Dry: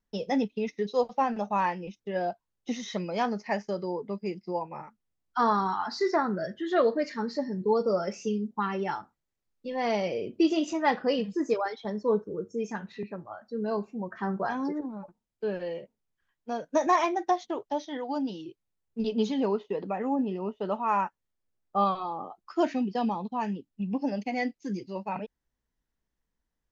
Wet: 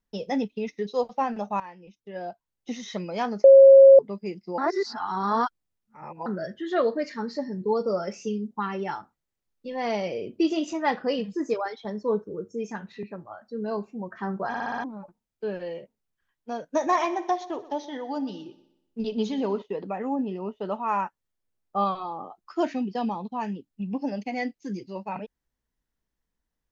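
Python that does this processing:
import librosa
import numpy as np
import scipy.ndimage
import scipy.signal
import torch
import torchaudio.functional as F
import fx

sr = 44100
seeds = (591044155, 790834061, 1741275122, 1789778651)

y = fx.echo_heads(x, sr, ms=61, heads='first and second', feedback_pct=45, wet_db=-19, at=(16.67, 19.62))
y = fx.edit(y, sr, fx.fade_in_from(start_s=1.6, length_s=1.32, floor_db=-17.0),
    fx.bleep(start_s=3.44, length_s=0.55, hz=543.0, db=-7.5),
    fx.reverse_span(start_s=4.58, length_s=1.68),
    fx.stutter_over(start_s=14.48, slice_s=0.06, count=6), tone=tone)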